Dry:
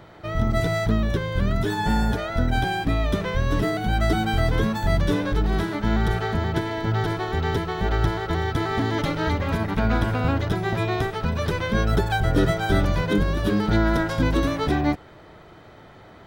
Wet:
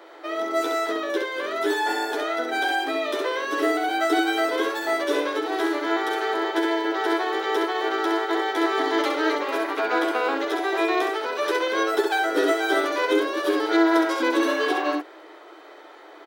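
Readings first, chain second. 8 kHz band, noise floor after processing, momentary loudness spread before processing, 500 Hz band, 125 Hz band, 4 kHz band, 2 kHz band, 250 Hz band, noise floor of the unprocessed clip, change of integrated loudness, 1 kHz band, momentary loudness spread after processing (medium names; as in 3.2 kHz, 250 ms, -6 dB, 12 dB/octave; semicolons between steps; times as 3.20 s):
+3.0 dB, -46 dBFS, 4 LU, +3.5 dB, under -40 dB, +3.0 dB, +3.5 dB, -1.0 dB, -47 dBFS, 0.0 dB, +3.0 dB, 4 LU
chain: spectral replace 14.40–14.91 s, 800–2800 Hz before; Chebyshev high-pass 300 Hz, order 6; on a send: early reflections 12 ms -6 dB, 66 ms -4 dB; on the sum: trim +1.5 dB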